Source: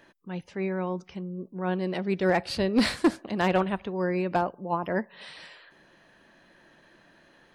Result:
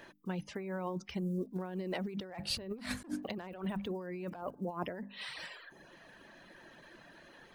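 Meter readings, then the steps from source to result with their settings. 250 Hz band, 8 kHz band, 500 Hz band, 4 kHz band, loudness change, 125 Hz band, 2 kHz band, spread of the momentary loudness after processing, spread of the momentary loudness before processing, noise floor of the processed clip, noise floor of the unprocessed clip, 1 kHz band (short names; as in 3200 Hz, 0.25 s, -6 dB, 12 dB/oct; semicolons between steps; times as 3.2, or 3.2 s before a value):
-11.0 dB, -4.5 dB, -12.5 dB, -6.0 dB, -11.5 dB, -8.5 dB, -12.0 dB, 18 LU, 15 LU, -59 dBFS, -60 dBFS, -14.5 dB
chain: block floating point 7-bit; reverb removal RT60 0.71 s; notches 50/100/150/200/250/300 Hz; dynamic EQ 4800 Hz, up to -5 dB, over -48 dBFS, Q 0.7; negative-ratio compressor -37 dBFS, ratio -1; gain -3 dB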